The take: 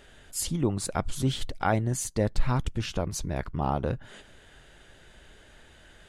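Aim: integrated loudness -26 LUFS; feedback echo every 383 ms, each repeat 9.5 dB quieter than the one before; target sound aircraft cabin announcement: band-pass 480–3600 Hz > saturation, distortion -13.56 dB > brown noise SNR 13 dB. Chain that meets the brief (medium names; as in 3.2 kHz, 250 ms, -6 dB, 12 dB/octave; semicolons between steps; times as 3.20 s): band-pass 480–3600 Hz; feedback delay 383 ms, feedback 33%, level -9.5 dB; saturation -20.5 dBFS; brown noise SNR 13 dB; trim +11 dB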